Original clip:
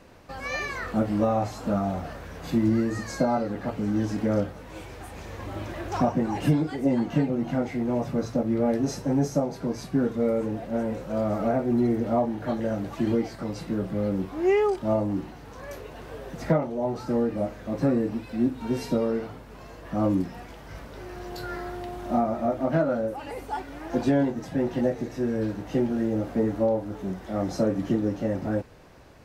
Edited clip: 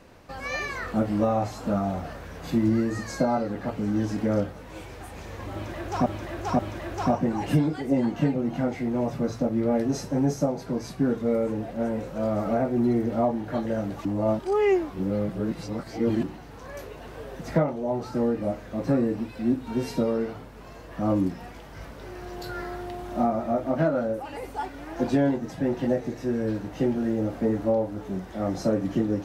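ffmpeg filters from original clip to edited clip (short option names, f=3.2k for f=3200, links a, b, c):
-filter_complex "[0:a]asplit=5[a][b][c][d][e];[a]atrim=end=6.062[f];[b]atrim=start=5.528:end=6.062[g];[c]atrim=start=5.528:end=12.992[h];[d]atrim=start=12.988:end=15.172,asetpts=PTS-STARTPTS,areverse[i];[e]atrim=start=15.168[j];[f][g]acrossfade=d=0.004:c1=hsin:c2=hsin[k];[k][h]acrossfade=d=0.004:c1=hsin:c2=hsin[l];[l][i]acrossfade=d=0.004:c1=hsin:c2=hsin[m];[m][j]acrossfade=d=0.004:c1=hsin:c2=hsin"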